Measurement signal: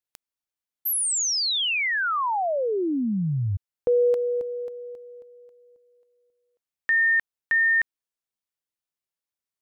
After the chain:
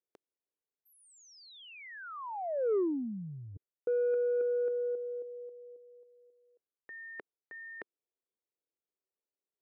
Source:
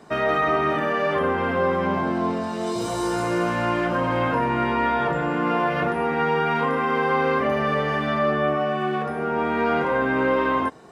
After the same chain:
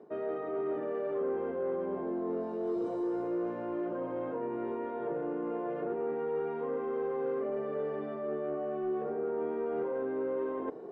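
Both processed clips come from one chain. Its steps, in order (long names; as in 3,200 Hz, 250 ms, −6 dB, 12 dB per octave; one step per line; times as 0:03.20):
reversed playback
downward compressor 6 to 1, threshold −33 dBFS
reversed playback
resonant band-pass 410 Hz, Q 2.8
soft clipping −31.5 dBFS
level +8 dB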